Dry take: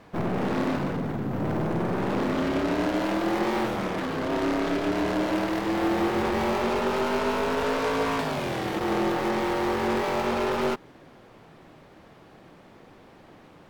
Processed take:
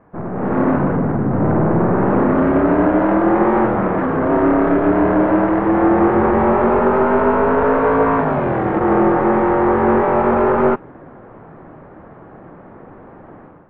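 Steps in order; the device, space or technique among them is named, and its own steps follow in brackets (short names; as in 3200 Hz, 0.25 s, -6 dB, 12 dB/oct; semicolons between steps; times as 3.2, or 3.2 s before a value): action camera in a waterproof case (LPF 1600 Hz 24 dB/oct; AGC gain up to 12 dB; AAC 48 kbps 22050 Hz)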